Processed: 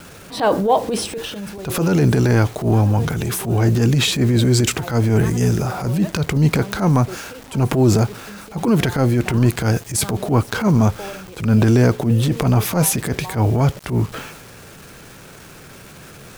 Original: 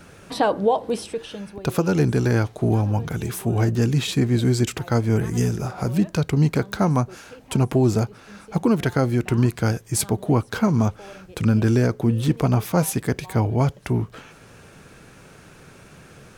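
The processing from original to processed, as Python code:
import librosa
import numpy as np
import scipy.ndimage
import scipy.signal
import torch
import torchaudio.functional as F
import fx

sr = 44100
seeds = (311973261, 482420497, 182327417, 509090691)

y = fx.quant_dither(x, sr, seeds[0], bits=8, dither='none')
y = fx.transient(y, sr, attack_db=-11, sustain_db=5)
y = F.gain(torch.from_numpy(y), 5.5).numpy()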